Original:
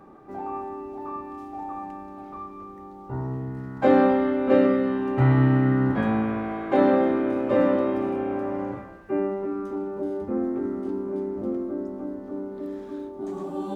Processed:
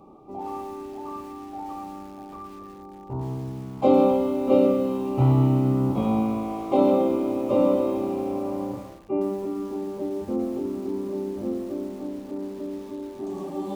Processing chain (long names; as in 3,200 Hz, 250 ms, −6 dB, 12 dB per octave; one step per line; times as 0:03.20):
Butterworth band-reject 1,700 Hz, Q 1.3
feedback echo at a low word length 113 ms, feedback 35%, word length 7 bits, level −11 dB